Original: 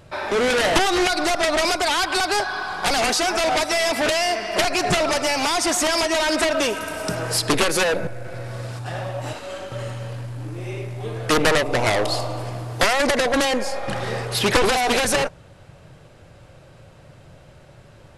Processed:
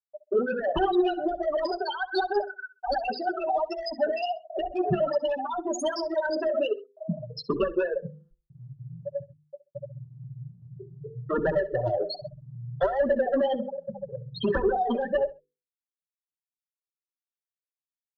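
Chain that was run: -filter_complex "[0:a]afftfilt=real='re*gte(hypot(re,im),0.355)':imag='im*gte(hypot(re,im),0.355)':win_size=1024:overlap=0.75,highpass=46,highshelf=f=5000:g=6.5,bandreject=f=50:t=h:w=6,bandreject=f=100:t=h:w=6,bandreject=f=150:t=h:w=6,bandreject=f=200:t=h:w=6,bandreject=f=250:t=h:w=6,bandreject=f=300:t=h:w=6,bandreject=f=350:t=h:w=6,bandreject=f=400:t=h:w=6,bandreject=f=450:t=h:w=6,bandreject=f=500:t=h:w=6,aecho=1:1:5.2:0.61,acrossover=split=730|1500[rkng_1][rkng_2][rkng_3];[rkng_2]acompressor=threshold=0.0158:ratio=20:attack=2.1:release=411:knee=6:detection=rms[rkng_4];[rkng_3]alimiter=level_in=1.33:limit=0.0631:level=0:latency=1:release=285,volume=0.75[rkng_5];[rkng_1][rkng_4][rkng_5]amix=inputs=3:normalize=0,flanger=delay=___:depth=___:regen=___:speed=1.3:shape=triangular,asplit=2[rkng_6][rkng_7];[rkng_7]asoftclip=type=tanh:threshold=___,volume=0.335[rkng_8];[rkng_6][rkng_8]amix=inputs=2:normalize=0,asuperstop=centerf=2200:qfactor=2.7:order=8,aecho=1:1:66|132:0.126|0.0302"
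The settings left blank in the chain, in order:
0.6, 8.5, 31, 0.0562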